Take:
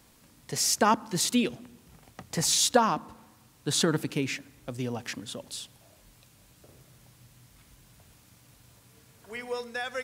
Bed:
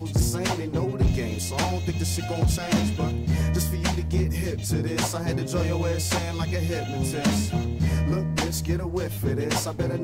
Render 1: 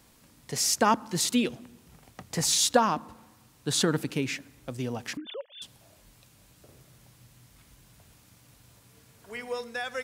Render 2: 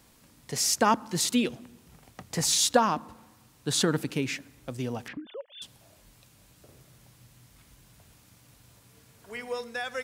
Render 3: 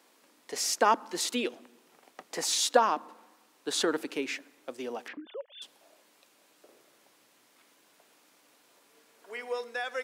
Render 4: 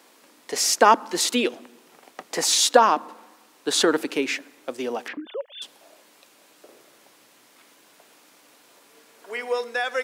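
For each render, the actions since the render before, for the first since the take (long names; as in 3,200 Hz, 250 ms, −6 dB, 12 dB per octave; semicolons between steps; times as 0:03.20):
0:05.17–0:05.62: three sine waves on the formant tracks
0:05.08–0:05.48: high-frequency loss of the air 490 metres
high-pass filter 310 Hz 24 dB per octave; high-shelf EQ 4,800 Hz −7 dB
level +8.5 dB; brickwall limiter −2 dBFS, peak gain reduction 2 dB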